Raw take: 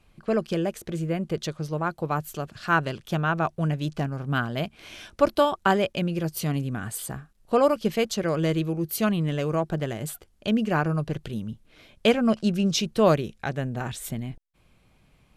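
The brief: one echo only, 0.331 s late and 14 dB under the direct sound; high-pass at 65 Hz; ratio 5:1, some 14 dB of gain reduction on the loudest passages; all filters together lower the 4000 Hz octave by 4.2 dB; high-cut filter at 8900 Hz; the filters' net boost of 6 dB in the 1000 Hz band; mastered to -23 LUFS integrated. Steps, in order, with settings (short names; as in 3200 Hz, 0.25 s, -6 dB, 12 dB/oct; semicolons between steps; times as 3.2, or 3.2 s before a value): HPF 65 Hz; LPF 8900 Hz; bell 1000 Hz +8 dB; bell 4000 Hz -6.5 dB; compressor 5:1, threshold -27 dBFS; echo 0.331 s -14 dB; gain +9 dB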